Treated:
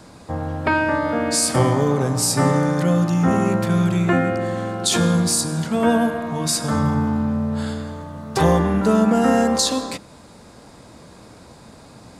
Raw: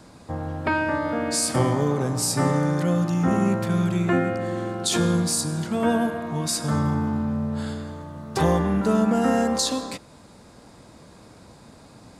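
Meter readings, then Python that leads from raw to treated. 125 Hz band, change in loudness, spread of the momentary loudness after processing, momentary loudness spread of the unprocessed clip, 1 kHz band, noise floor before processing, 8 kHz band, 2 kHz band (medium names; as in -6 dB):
+3.5 dB, +4.0 dB, 9 LU, 9 LU, +4.5 dB, -49 dBFS, +4.5 dB, +4.5 dB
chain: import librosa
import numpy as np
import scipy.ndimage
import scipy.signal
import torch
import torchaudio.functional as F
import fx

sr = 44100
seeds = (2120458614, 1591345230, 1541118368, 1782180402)

y = fx.hum_notches(x, sr, base_hz=50, count=7)
y = y * 10.0 ** (4.5 / 20.0)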